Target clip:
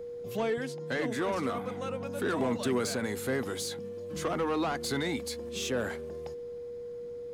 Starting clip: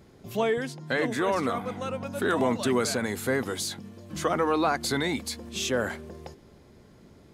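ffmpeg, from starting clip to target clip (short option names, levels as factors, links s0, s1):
-filter_complex "[0:a]aeval=exprs='val(0)+0.02*sin(2*PI*480*n/s)':c=same,acrossover=split=380[s0][s1];[s1]asoftclip=type=tanh:threshold=0.0631[s2];[s0][s2]amix=inputs=2:normalize=0,volume=0.668"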